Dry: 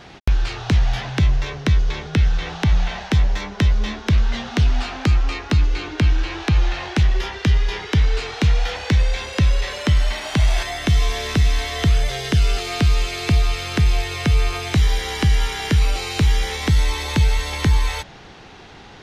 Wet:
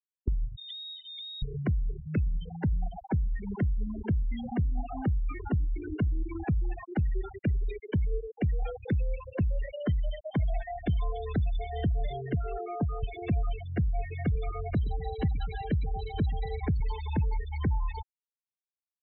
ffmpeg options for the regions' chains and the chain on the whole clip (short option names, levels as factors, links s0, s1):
-filter_complex "[0:a]asettb=1/sr,asplit=3[s0][s1][s2];[s0]atrim=end=0.564[s3];[s1]atrim=start=0.56:end=1.42,asetpts=PTS-STARTPTS,afade=t=in:d=0.004:c=qsin,afade=t=out:st=0.856:d=0.004:c=qsin,lowpass=f=3200:t=q:w=0.5098,lowpass=f=3200:t=q:w=0.6013,lowpass=f=3200:t=q:w=0.9,lowpass=f=3200:t=q:w=2.563,afreqshift=-3800,acompressor=threshold=0.1:ratio=20:attack=3.2:release=140:knee=1:detection=peak[s4];[s2]atrim=start=1.416[s5];[s3][s4]acrossfade=d=0.004:c1=hsin:c2=qsin[s6];[s6][s5]acrossfade=d=0.004:c1=qsin:c2=hsin,asettb=1/sr,asplit=3[s7][s8][s9];[s7]atrim=end=3.084[s10];[s8]atrim=start=3.08:end=6.53,asetpts=PTS-STARTPTS,afade=t=in:d=0.004:c=qsin,afade=t=out:st=3.446:d=0.004:c=qsin,highshelf=f=4400:g=-4.5,acompressor=mode=upward:threshold=0.1:ratio=2.5:attack=3.2:release=140:knee=2.83:detection=peak[s11];[s9]atrim=start=6.526[s12];[s10][s11]acrossfade=d=0.004:c1=hsin:c2=qsin[s13];[s13][s12]acrossfade=d=0.004:c1=qsin:c2=hsin,asettb=1/sr,asplit=3[s14][s15][s16];[s14]atrim=end=12.334[s17];[s15]atrim=start=12.33:end=13.03,asetpts=PTS-STARTPTS,afade=t=in:d=0.004:c=qsin,afade=t=out:st=0.696:d=0.004:c=qsin,highpass=67,highshelf=f=3200:g=-3,asplit=2[s18][s19];[s19]highpass=f=720:p=1,volume=5.62,asoftclip=type=tanh:threshold=0.422[s20];[s18][s20]amix=inputs=2:normalize=0,lowpass=f=1000:p=1,volume=0.501[s21];[s16]atrim=start=13.026[s22];[s17][s21]acrossfade=d=0.004:c1=hsin:c2=qsin[s23];[s23][s22]acrossfade=d=0.004:c1=qsin:c2=hsin,asettb=1/sr,asplit=3[s24][s25][s26];[s24]atrim=end=14.354[s27];[s25]atrim=start=14.35:end=16.8,asetpts=PTS-STARTPTS,afade=t=in:d=0.004:c=qsin,afade=t=out:st=2.446:d=0.004:c=qsin,highpass=50,aecho=1:1:118|236|354|472|590|708:0.2|0.118|0.0695|0.041|0.0242|0.0143,atrim=end_sample=108045[s28];[s26]atrim=start=16.796[s29];[s27][s28]acrossfade=d=0.004:c1=hsin:c2=qsin[s30];[s30][s29]acrossfade=d=0.004:c1=qsin:c2=hsin,afftfilt=real='re*gte(hypot(re,im),0.158)':imag='im*gte(hypot(re,im),0.158)':win_size=1024:overlap=0.75,equalizer=f=3000:w=0.58:g=-9.5,acrossover=split=190|630[s31][s32][s33];[s31]acompressor=threshold=0.0398:ratio=4[s34];[s32]acompressor=threshold=0.0112:ratio=4[s35];[s33]acompressor=threshold=0.00794:ratio=4[s36];[s34][s35][s36]amix=inputs=3:normalize=0"